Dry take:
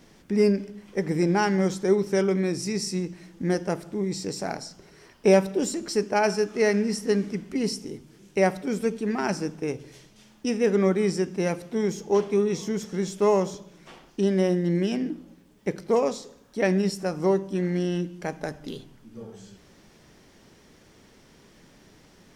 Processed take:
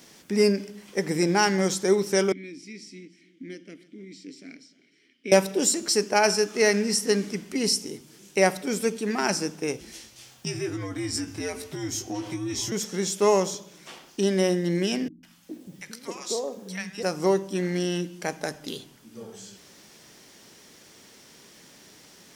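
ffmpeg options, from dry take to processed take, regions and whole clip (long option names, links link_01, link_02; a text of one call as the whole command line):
ffmpeg -i in.wav -filter_complex "[0:a]asettb=1/sr,asplit=3[link_01][link_02][link_03];[link_01]atrim=end=2.324[link_04];[link_02]atrim=start=2.32:end=5.32,asetpts=PTS-STARTPTS,afade=type=in:duration=0.004:curve=qsin,afade=type=out:start_time=2.996:duration=0.004:curve=qsin,asplit=3[link_05][link_06][link_07];[link_05]bandpass=frequency=270:width_type=q:width=8,volume=0dB[link_08];[link_06]bandpass=frequency=2290:width_type=q:width=8,volume=-6dB[link_09];[link_07]bandpass=frequency=3010:width_type=q:width=8,volume=-9dB[link_10];[link_08][link_09][link_10]amix=inputs=3:normalize=0,aecho=1:1:306:0.106,atrim=end_sample=132300[link_11];[link_03]atrim=start=5.316[link_12];[link_04][link_11]acrossfade=duration=0.004:curve1=hsin:curve2=qsin[link_13];[link_13][link_12]acrossfade=duration=0.004:curve1=qsin:curve2=hsin,asettb=1/sr,asplit=3[link_14][link_15][link_16];[link_14]atrim=end=9.804[link_17];[link_15]atrim=start=9.8:end=12.72,asetpts=PTS-STARTPTS,afade=type=in:duration=0.004:curve=qsin,afade=type=out:start_time=2.916:duration=0.004:curve=qsin,acompressor=threshold=-28dB:ratio=6:attack=3.2:release=140:knee=1:detection=peak,afreqshift=-87,asplit=2[link_18][link_19];[link_19]adelay=18,volume=-6dB[link_20];[link_18][link_20]amix=inputs=2:normalize=0,atrim=end_sample=128772[link_21];[link_16]atrim=start=12.716[link_22];[link_17][link_21]acrossfade=duration=0.004:curve1=hsin:curve2=qsin[link_23];[link_23][link_22]acrossfade=duration=0.004:curve1=qsin:curve2=hsin,asettb=1/sr,asplit=3[link_24][link_25][link_26];[link_24]atrim=end=15.084[link_27];[link_25]atrim=start=15.08:end=17.03,asetpts=PTS-STARTPTS,afade=type=in:duration=0.004:curve=qsin,afade=type=out:start_time=1.946:duration=0.004:curve=qsin,acompressor=threshold=-31dB:ratio=2:attack=3.2:release=140:knee=1:detection=peak,acrossover=split=210|940[link_28][link_29][link_30];[link_30]adelay=150[link_31];[link_29]adelay=410[link_32];[link_28][link_32][link_31]amix=inputs=3:normalize=0,atrim=end_sample=85995[link_33];[link_26]atrim=start=17.026[link_34];[link_27][link_33]acrossfade=duration=0.004:curve1=hsin:curve2=qsin[link_35];[link_35][link_34]acrossfade=duration=0.004:curve1=qsin:curve2=hsin,highpass=frequency=200:poles=1,highshelf=frequency=3100:gain=11,volume=1dB" out.wav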